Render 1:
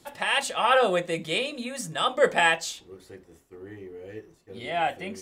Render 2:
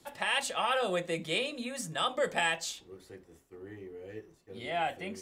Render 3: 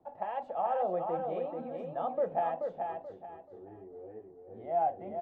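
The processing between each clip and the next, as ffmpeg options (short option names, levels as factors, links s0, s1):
-filter_complex "[0:a]acrossover=split=180|3000[s0][s1][s2];[s1]acompressor=threshold=0.0708:ratio=6[s3];[s0][s3][s2]amix=inputs=3:normalize=0,volume=0.631"
-filter_complex "[0:a]lowpass=f=740:t=q:w=3.9,asplit=2[s0][s1];[s1]aecho=0:1:432|864|1296|1728:0.562|0.163|0.0473|0.0137[s2];[s0][s2]amix=inputs=2:normalize=0,volume=0.473"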